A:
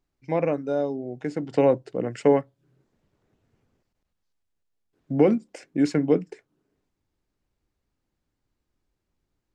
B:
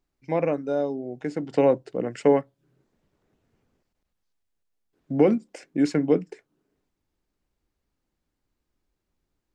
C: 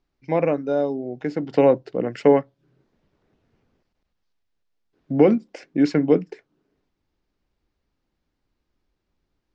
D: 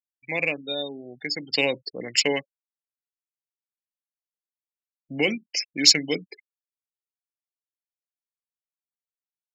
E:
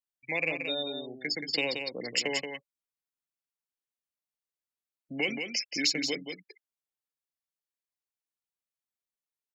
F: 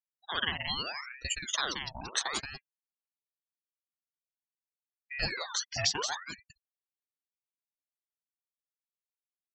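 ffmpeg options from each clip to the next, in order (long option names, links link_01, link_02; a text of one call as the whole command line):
ffmpeg -i in.wav -af "equalizer=frequency=110:width=2.6:gain=-5.5" out.wav
ffmpeg -i in.wav -af "lowpass=frequency=5700:width=0.5412,lowpass=frequency=5700:width=1.3066,volume=3.5dB" out.wav
ffmpeg -i in.wav -af "aemphasis=mode=production:type=75fm,afftfilt=real='re*gte(hypot(re,im),0.0178)':imag='im*gte(hypot(re,im),0.0178)':win_size=1024:overlap=0.75,aexciter=amount=16:drive=6.6:freq=2100,volume=-10dB" out.wav
ffmpeg -i in.wav -filter_complex "[0:a]acrossover=split=190|930[link_01][link_02][link_03];[link_01]acompressor=threshold=-50dB:ratio=4[link_04];[link_02]acompressor=threshold=-31dB:ratio=4[link_05];[link_03]acompressor=threshold=-24dB:ratio=4[link_06];[link_04][link_05][link_06]amix=inputs=3:normalize=0,aecho=1:1:178:0.473,volume=-2.5dB" out.wav
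ffmpeg -i in.wav -af "afftdn=noise_reduction=25:noise_floor=-43,aecho=1:1:0.8:0.39,aeval=exprs='val(0)*sin(2*PI*1300*n/s+1300*0.7/0.77*sin(2*PI*0.77*n/s))':channel_layout=same" out.wav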